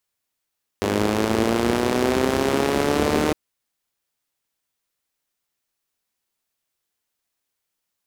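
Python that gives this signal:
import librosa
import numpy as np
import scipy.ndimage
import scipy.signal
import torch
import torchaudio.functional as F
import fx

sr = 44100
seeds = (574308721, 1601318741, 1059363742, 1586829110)

y = fx.engine_four_rev(sr, seeds[0], length_s=2.51, rpm=3000, resonances_hz=(88.0, 230.0, 350.0), end_rpm=4600)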